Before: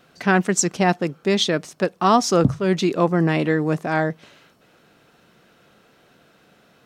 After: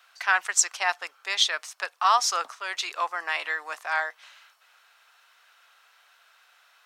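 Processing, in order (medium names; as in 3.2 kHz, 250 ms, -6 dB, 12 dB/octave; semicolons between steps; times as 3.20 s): high-pass 930 Hz 24 dB/octave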